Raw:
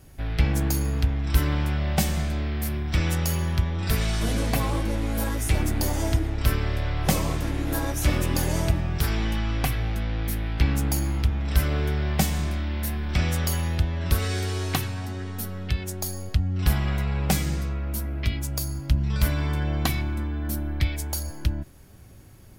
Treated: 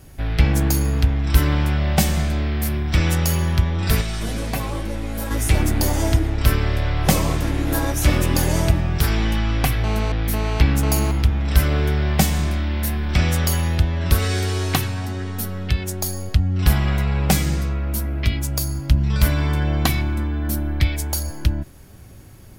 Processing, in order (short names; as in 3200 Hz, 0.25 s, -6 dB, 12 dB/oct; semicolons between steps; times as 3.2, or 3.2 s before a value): 4.01–5.31 resonator 190 Hz, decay 0.17 s, harmonics all, mix 60%; 9.84–11.11 GSM buzz -34 dBFS; gain +5.5 dB